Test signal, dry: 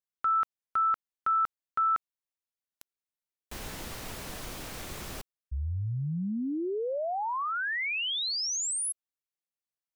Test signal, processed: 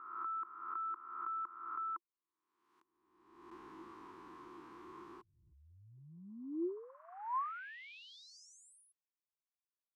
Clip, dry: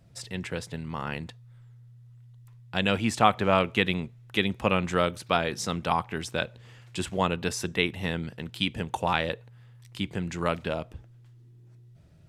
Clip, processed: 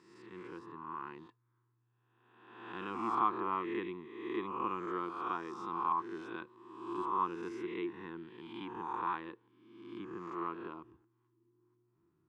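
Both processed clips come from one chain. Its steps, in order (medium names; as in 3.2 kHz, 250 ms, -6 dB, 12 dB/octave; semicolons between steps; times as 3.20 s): reverse spectral sustain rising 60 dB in 1.14 s; two resonant band-passes 600 Hz, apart 1.6 oct; trim -3.5 dB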